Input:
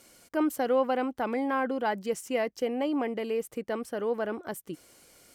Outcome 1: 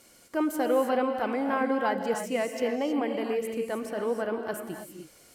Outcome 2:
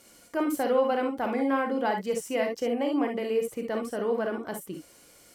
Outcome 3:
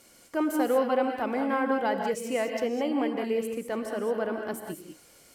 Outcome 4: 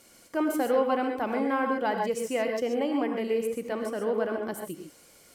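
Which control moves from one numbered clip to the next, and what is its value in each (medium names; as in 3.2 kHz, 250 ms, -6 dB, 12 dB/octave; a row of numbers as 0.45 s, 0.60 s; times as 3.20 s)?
gated-style reverb, gate: 340 ms, 80 ms, 230 ms, 160 ms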